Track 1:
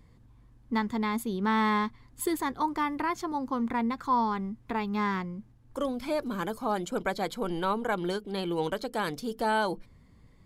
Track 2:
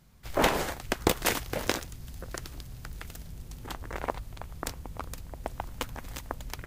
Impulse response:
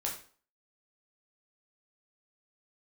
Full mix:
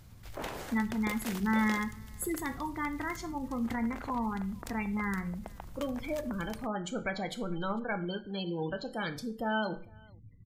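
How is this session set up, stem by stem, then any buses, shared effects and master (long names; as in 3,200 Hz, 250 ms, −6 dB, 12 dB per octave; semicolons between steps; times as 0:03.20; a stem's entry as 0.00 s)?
−5.0 dB, 0.00 s, send −5.5 dB, echo send −23.5 dB, gate on every frequency bin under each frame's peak −20 dB strong; graphic EQ with 15 bands 100 Hz +9 dB, 400 Hz −7 dB, 1,000 Hz −10 dB, 2,500 Hz +6 dB
−16.5 dB, 0.00 s, no send, no echo send, envelope flattener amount 50%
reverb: on, RT60 0.45 s, pre-delay 7 ms
echo: single-tap delay 452 ms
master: no processing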